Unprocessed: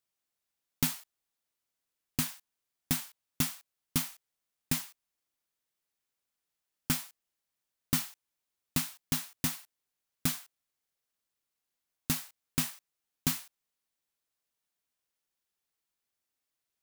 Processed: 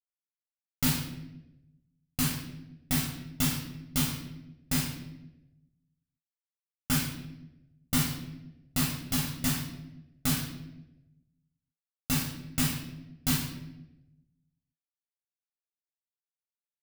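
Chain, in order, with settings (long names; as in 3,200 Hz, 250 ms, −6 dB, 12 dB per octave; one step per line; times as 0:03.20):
downward expander −48 dBFS
convolution reverb RT60 0.95 s, pre-delay 11 ms, DRR −5 dB
level −4 dB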